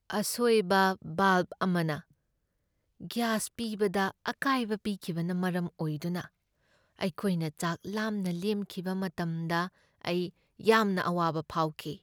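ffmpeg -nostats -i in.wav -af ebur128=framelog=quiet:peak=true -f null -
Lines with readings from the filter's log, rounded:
Integrated loudness:
  I:         -30.5 LUFS
  Threshold: -40.7 LUFS
Loudness range:
  LRA:         4.4 LU
  Threshold: -52.1 LUFS
  LRA low:   -34.0 LUFS
  LRA high:  -29.6 LUFS
True peak:
  Peak:      -11.4 dBFS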